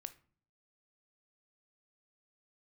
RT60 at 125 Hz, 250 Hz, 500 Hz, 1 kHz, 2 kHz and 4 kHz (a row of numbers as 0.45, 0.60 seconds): 0.75, 0.70, 0.50, 0.45, 0.35, 0.30 seconds